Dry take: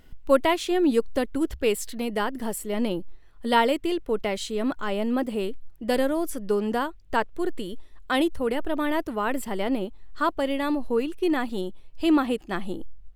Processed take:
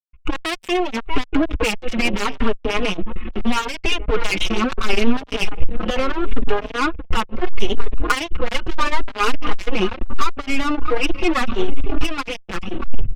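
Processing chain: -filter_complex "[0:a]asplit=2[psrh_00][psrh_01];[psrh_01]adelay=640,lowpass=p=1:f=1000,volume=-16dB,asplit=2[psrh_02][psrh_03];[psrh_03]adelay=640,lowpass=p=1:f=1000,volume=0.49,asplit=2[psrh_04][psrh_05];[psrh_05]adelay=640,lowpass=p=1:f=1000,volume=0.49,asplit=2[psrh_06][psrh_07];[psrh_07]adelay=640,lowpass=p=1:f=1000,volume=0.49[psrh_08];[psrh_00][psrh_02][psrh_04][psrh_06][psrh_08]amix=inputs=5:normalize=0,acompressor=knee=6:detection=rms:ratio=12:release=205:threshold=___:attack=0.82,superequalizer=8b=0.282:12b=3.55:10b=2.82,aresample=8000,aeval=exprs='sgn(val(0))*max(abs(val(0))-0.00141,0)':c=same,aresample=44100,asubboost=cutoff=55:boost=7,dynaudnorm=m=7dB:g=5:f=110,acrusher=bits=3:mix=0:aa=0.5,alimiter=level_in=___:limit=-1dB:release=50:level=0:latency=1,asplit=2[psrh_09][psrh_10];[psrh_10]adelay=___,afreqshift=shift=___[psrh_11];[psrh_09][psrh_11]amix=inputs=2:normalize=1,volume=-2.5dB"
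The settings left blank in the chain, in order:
-32dB, 14dB, 4.5, 0.75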